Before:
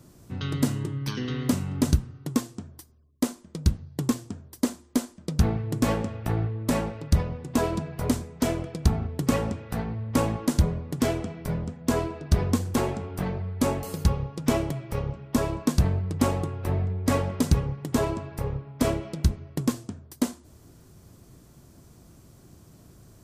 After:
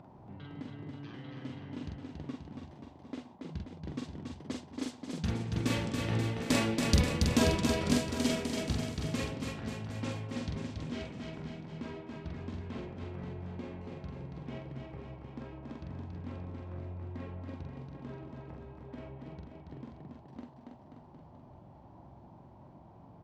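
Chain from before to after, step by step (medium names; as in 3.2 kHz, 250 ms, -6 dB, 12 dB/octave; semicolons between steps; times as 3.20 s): Doppler pass-by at 7.01 s, 10 m/s, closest 6.9 m; frequency weighting D; level-controlled noise filter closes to 1.1 kHz, open at -28.5 dBFS; bass shelf 250 Hz +10 dB; upward compressor, threshold -33 dBFS; doubling 45 ms -3 dB; bouncing-ball echo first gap 280 ms, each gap 0.9×, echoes 5; band noise 550–1000 Hz -55 dBFS; trim -6 dB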